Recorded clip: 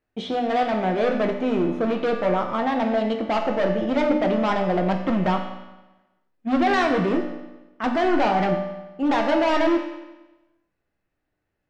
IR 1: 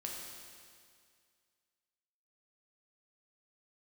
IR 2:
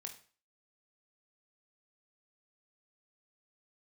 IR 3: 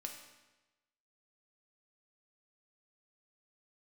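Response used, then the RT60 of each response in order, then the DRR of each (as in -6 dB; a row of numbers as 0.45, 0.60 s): 3; 2.1, 0.40, 1.1 s; -2.0, 3.0, 2.5 dB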